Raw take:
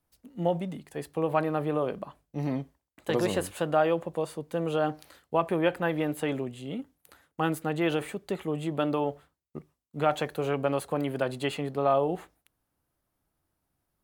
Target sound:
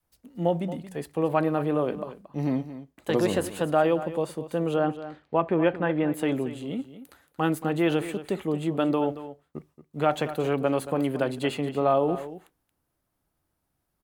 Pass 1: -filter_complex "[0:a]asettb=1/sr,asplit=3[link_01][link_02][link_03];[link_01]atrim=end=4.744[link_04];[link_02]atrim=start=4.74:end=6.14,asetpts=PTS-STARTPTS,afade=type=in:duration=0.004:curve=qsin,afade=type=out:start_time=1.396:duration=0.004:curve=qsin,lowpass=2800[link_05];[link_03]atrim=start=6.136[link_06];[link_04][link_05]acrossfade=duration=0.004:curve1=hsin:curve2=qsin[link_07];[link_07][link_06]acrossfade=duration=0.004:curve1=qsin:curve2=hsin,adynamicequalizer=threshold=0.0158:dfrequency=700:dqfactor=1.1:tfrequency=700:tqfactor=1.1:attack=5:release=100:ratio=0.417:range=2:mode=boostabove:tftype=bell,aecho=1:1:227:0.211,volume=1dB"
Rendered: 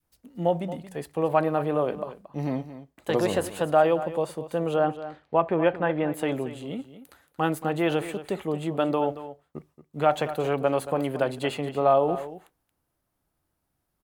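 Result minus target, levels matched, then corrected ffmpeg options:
250 Hz band −3.0 dB
-filter_complex "[0:a]asettb=1/sr,asplit=3[link_01][link_02][link_03];[link_01]atrim=end=4.744[link_04];[link_02]atrim=start=4.74:end=6.14,asetpts=PTS-STARTPTS,afade=type=in:duration=0.004:curve=qsin,afade=type=out:start_time=1.396:duration=0.004:curve=qsin,lowpass=2800[link_05];[link_03]atrim=start=6.136[link_06];[link_04][link_05]acrossfade=duration=0.004:curve1=hsin:curve2=qsin[link_07];[link_07][link_06]acrossfade=duration=0.004:curve1=qsin:curve2=hsin,adynamicequalizer=threshold=0.0158:dfrequency=270:dqfactor=1.1:tfrequency=270:tqfactor=1.1:attack=5:release=100:ratio=0.417:range=2:mode=boostabove:tftype=bell,aecho=1:1:227:0.211,volume=1dB"

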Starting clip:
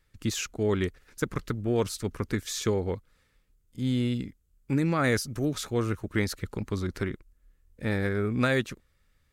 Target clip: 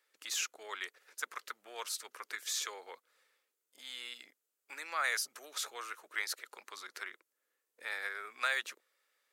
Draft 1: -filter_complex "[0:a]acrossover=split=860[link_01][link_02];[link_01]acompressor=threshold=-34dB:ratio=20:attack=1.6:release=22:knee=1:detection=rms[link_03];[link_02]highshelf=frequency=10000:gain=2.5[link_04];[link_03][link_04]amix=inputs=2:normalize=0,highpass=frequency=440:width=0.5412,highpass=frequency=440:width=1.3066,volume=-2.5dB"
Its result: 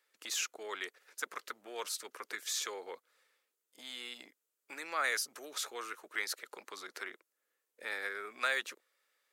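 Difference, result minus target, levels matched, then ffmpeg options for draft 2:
downward compressor: peak gain reduction −10.5 dB
-filter_complex "[0:a]acrossover=split=860[link_01][link_02];[link_01]acompressor=threshold=-45dB:ratio=20:attack=1.6:release=22:knee=1:detection=rms[link_03];[link_02]highshelf=frequency=10000:gain=2.5[link_04];[link_03][link_04]amix=inputs=2:normalize=0,highpass=frequency=440:width=0.5412,highpass=frequency=440:width=1.3066,volume=-2.5dB"

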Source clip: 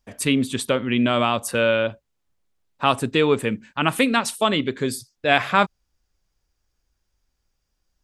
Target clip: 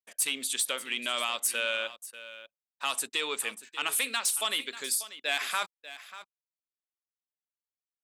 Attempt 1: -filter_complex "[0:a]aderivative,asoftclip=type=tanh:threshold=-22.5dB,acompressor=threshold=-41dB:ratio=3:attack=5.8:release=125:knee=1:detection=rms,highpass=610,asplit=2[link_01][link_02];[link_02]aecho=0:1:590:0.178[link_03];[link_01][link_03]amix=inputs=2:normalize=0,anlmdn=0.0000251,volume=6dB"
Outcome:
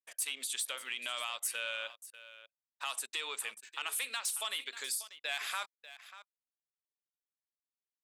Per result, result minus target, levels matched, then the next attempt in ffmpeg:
250 Hz band −10.5 dB; downward compressor: peak gain reduction +7.5 dB
-filter_complex "[0:a]aderivative,asoftclip=type=tanh:threshold=-22.5dB,acompressor=threshold=-41dB:ratio=3:attack=5.8:release=125:knee=1:detection=rms,highpass=230,asplit=2[link_01][link_02];[link_02]aecho=0:1:590:0.178[link_03];[link_01][link_03]amix=inputs=2:normalize=0,anlmdn=0.0000251,volume=6dB"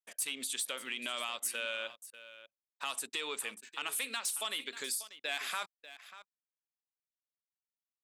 downward compressor: peak gain reduction +7.5 dB
-filter_complex "[0:a]aderivative,asoftclip=type=tanh:threshold=-22.5dB,acompressor=threshold=-30dB:ratio=3:attack=5.8:release=125:knee=1:detection=rms,highpass=230,asplit=2[link_01][link_02];[link_02]aecho=0:1:590:0.178[link_03];[link_01][link_03]amix=inputs=2:normalize=0,anlmdn=0.0000251,volume=6dB"

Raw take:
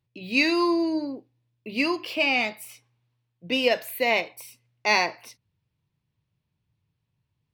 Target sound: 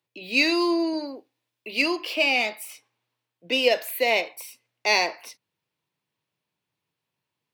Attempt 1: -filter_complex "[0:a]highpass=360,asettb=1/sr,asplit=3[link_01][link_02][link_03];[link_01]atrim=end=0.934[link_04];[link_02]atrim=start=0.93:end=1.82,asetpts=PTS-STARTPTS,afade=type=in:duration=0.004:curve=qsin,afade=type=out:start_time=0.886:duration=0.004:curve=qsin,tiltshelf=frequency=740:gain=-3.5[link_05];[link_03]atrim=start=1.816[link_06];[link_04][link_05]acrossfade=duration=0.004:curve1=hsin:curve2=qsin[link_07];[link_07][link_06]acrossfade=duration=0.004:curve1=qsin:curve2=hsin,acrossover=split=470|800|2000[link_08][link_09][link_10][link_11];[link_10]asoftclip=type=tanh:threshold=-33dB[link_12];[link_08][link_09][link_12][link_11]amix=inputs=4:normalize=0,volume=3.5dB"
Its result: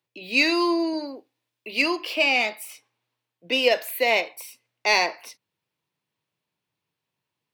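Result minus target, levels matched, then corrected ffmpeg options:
soft clipping: distortion −6 dB
-filter_complex "[0:a]highpass=360,asettb=1/sr,asplit=3[link_01][link_02][link_03];[link_01]atrim=end=0.934[link_04];[link_02]atrim=start=0.93:end=1.82,asetpts=PTS-STARTPTS,afade=type=in:duration=0.004:curve=qsin,afade=type=out:start_time=0.886:duration=0.004:curve=qsin,tiltshelf=frequency=740:gain=-3.5[link_05];[link_03]atrim=start=1.816[link_06];[link_04][link_05]acrossfade=duration=0.004:curve1=hsin:curve2=qsin[link_07];[link_07][link_06]acrossfade=duration=0.004:curve1=qsin:curve2=hsin,acrossover=split=470|800|2000[link_08][link_09][link_10][link_11];[link_10]asoftclip=type=tanh:threshold=-43dB[link_12];[link_08][link_09][link_12][link_11]amix=inputs=4:normalize=0,volume=3.5dB"

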